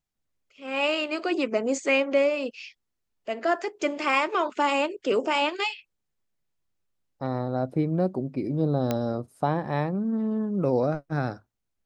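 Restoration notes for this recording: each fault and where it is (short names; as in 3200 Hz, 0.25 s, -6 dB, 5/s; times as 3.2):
8.91 pop -12 dBFS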